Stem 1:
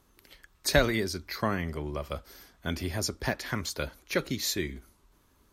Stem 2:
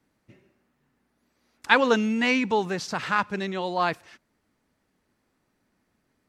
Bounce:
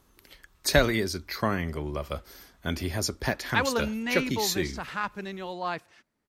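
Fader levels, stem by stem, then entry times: +2.0 dB, -7.0 dB; 0.00 s, 1.85 s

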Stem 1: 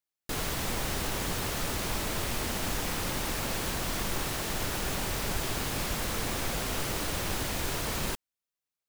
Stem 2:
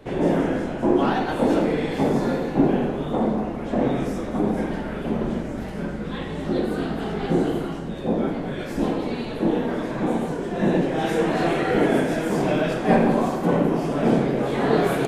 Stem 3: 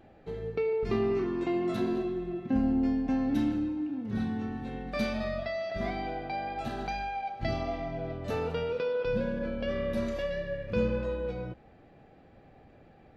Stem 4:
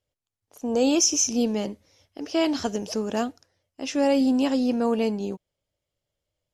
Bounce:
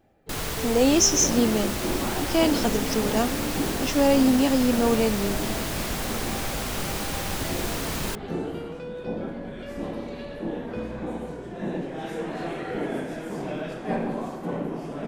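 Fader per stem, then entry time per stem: +2.0 dB, -10.0 dB, -7.0 dB, +1.5 dB; 0.00 s, 1.00 s, 0.00 s, 0.00 s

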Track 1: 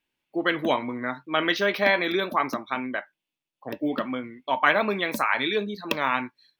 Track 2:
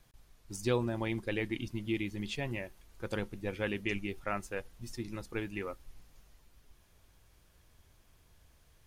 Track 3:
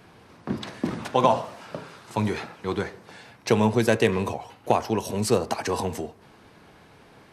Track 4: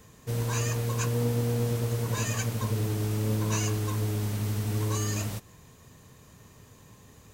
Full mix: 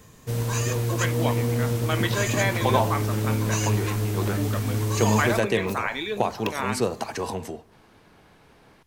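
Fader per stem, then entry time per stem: -4.5 dB, -3.5 dB, -3.0 dB, +3.0 dB; 0.55 s, 0.00 s, 1.50 s, 0.00 s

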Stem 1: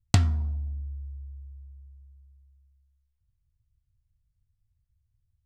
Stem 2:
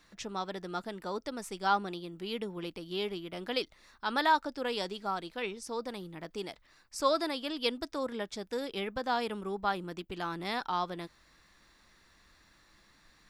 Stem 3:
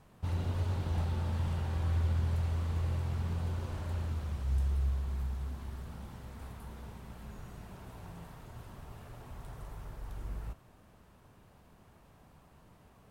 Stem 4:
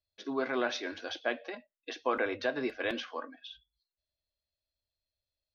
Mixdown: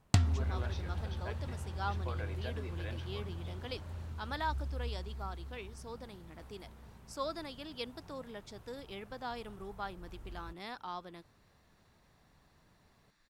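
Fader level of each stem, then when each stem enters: -6.0 dB, -10.0 dB, -8.0 dB, -13.5 dB; 0.00 s, 0.15 s, 0.00 s, 0.00 s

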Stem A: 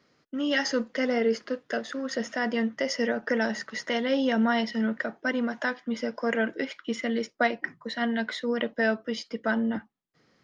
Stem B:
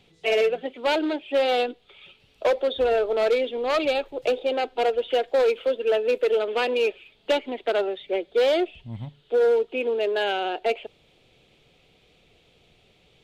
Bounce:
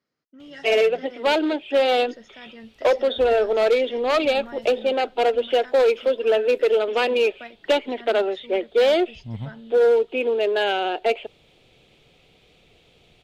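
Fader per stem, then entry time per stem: -16.0 dB, +3.0 dB; 0.00 s, 0.40 s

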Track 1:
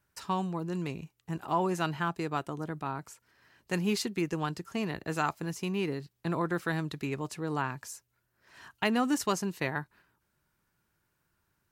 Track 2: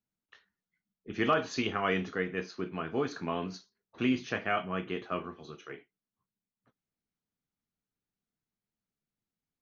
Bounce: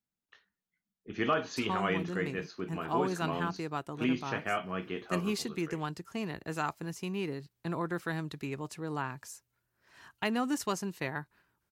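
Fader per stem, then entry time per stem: -3.5 dB, -2.0 dB; 1.40 s, 0.00 s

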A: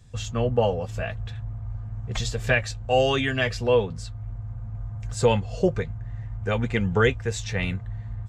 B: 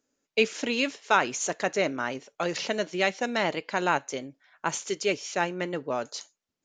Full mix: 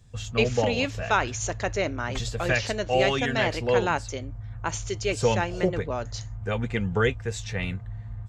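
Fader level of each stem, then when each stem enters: -3.0 dB, -1.0 dB; 0.00 s, 0.00 s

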